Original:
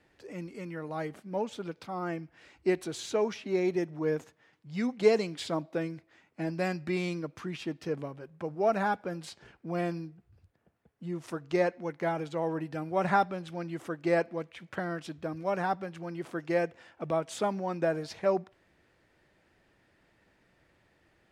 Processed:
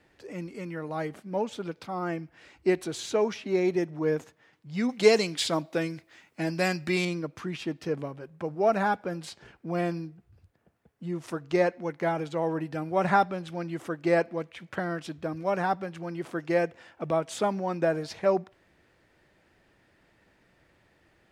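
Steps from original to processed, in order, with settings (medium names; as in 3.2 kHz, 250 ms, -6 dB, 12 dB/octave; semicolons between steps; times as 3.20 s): 4.89–7.05 s: treble shelf 2.1 kHz +9.5 dB; trim +3 dB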